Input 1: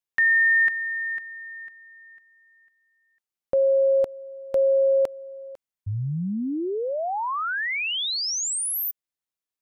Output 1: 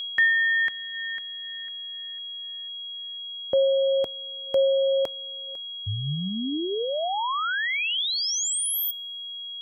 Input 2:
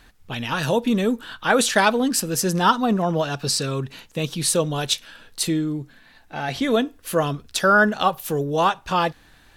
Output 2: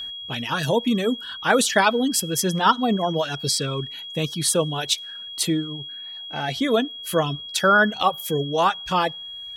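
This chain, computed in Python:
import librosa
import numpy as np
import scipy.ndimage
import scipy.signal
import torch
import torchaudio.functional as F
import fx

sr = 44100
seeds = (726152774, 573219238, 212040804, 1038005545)

y = x + 10.0 ** (-29.0 / 20.0) * np.sin(2.0 * np.pi * 3300.0 * np.arange(len(x)) / sr)
y = scipy.signal.sosfilt(scipy.signal.butter(2, 52.0, 'highpass', fs=sr, output='sos'), y)
y = fx.rev_double_slope(y, sr, seeds[0], early_s=0.49, late_s=2.7, knee_db=-21, drr_db=19.5)
y = fx.dereverb_blind(y, sr, rt60_s=0.97)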